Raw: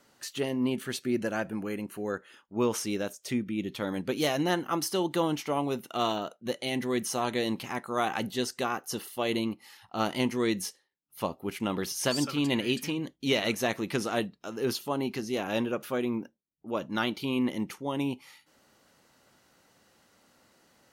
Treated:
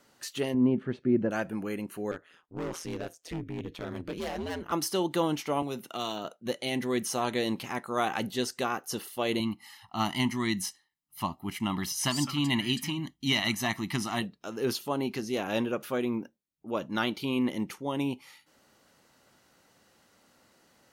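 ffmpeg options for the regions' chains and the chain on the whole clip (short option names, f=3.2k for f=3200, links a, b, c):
-filter_complex "[0:a]asettb=1/sr,asplit=3[a][b][c];[a]atrim=end=0.544[d];[b]atrim=start=0.54:end=1.31,asetpts=PTS-STARTPTS,afade=t=in:d=0.004:c=qsin,afade=t=out:st=0.766:d=0.004:c=qsin,lowpass=1.9k,tiltshelf=f=690:g=6[e];[c]atrim=start=1.306[f];[d][e]acrossfade=d=0.004:c1=hsin:c2=qsin[g];[g][f]acrossfade=d=0.004:c1=qsin:c2=hsin,asettb=1/sr,asplit=3[h][i][j];[h]atrim=end=2.114[k];[i]atrim=start=2.11:end=4.72,asetpts=PTS-STARTPTS,afade=t=in:d=0.004:c=qsin,afade=t=out:st=2.606:d=0.004:c=qsin,highshelf=f=4.9k:g=-8,volume=29dB,asoftclip=hard,volume=-29dB,aeval=exprs='val(0)*sin(2*PI*84*n/s)':c=same[l];[j]atrim=start=4.716[m];[k][l]acrossfade=d=0.004:c1=hsin:c2=qsin[n];[n][m]acrossfade=d=0.004:c1=qsin:c2=hsin,asettb=1/sr,asplit=3[o][p][q];[o]atrim=end=5.624[r];[p]atrim=start=5.62:end=6.25,asetpts=PTS-STARTPTS,afade=t=in:d=0.004:c=qsin,afade=t=out:st=0.626:d=0.004:c=qsin,equalizer=f=110:w=5.6:g=-6,acrossover=split=130|3000[s][t][u];[t]acompressor=threshold=-33dB:ratio=2.5:attack=3.2:release=140:knee=2.83:detection=peak[v];[s][v][u]amix=inputs=3:normalize=0[w];[q]atrim=start=6.246[x];[r][w]acrossfade=d=0.004:c1=hsin:c2=qsin[y];[y][x]acrossfade=d=0.004:c1=qsin:c2=hsin,asettb=1/sr,asplit=3[z][aa][ab];[z]atrim=end=9.404[ac];[aa]atrim=start=9.4:end=14.22,asetpts=PTS-STARTPTS,afade=t=in:d=0.004:c=qsin,afade=t=out:st=4.816:d=0.004:c=qsin,equalizer=f=480:t=o:w=0.45:g=-15,aecho=1:1:1:0.6,atrim=end_sample=212562[ad];[ab]atrim=start=14.216[ae];[ac][ad]acrossfade=d=0.004:c1=hsin:c2=qsin[af];[af][ae]acrossfade=d=0.004:c1=qsin:c2=hsin"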